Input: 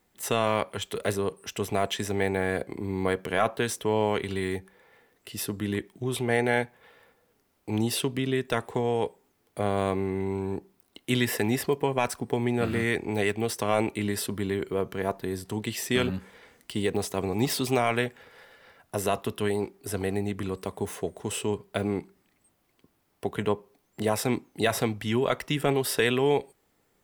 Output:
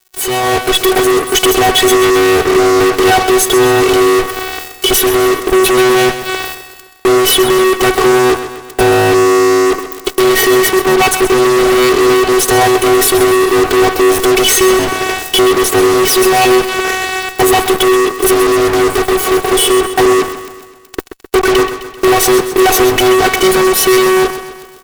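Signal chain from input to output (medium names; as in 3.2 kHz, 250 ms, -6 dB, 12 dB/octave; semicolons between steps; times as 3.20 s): comb 2.2 ms, depth 31%; robot voice 345 Hz; fifteen-band graphic EQ 160 Hz +8 dB, 400 Hz +5 dB, 1.6 kHz -7 dB, 4 kHz -8 dB; compression 10:1, threshold -36 dBFS, peak gain reduction 18.5 dB; dynamic bell 2 kHz, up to +6 dB, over -59 dBFS, Q 0.72; fuzz box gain 57 dB, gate -56 dBFS; level rider gain up to 10.5 dB; on a send: feedback delay 141 ms, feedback 54%, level -11 dB; on the sum: speed mistake 44.1 kHz file played as 48 kHz; trim -1.5 dB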